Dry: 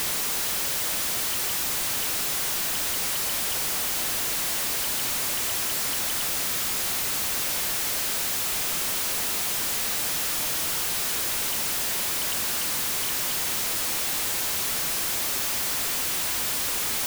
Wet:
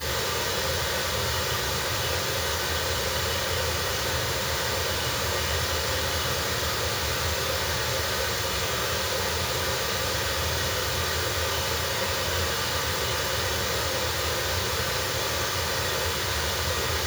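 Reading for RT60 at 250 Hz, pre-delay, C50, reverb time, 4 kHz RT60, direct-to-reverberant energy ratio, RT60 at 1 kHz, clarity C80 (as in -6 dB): 0.80 s, 3 ms, 2.0 dB, 0.70 s, 0.70 s, -18.0 dB, 0.70 s, 5.5 dB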